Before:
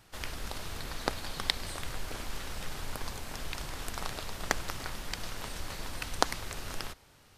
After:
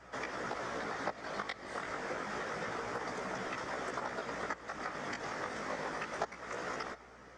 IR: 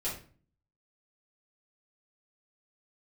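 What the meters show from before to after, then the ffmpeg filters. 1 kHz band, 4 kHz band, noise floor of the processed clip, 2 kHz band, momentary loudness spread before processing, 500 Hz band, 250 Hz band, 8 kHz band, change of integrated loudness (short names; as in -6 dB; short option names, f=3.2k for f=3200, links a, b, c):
+1.0 dB, -11.0 dB, -55 dBFS, +0.5 dB, 8 LU, +3.0 dB, 0.0 dB, -10.5 dB, -2.0 dB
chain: -af "highpass=f=160:w=0.5412,highpass=f=160:w=1.3066,equalizer=f=230:t=q:w=4:g=7,equalizer=f=450:t=q:w=4:g=6,equalizer=f=1.3k:t=q:w=4:g=7,equalizer=f=1.9k:t=q:w=4:g=8,equalizer=f=2.8k:t=q:w=4:g=-6,equalizer=f=4.1k:t=q:w=4:g=-10,lowpass=f=6.5k:w=0.5412,lowpass=f=6.5k:w=1.3066,afftfilt=real='hypot(re,im)*cos(2*PI*random(0))':imag='hypot(re,im)*sin(2*PI*random(1))':win_size=512:overlap=0.75,acompressor=threshold=-45dB:ratio=16,equalizer=f=650:w=0.93:g=7.5,flanger=delay=15.5:depth=4.5:speed=0.28,aeval=exprs='val(0)+0.000178*(sin(2*PI*60*n/s)+sin(2*PI*2*60*n/s)/2+sin(2*PI*3*60*n/s)/3+sin(2*PI*4*60*n/s)/4+sin(2*PI*5*60*n/s)/5)':c=same,volume=10dB"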